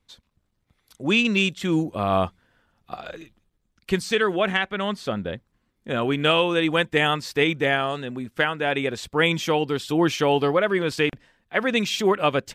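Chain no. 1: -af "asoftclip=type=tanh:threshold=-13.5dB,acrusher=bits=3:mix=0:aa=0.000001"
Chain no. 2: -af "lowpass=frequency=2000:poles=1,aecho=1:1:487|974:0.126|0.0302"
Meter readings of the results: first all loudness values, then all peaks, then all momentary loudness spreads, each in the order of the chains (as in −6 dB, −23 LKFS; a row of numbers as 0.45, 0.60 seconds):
−23.0, −24.0 LKFS; −17.0, −8.5 dBFS; 10, 16 LU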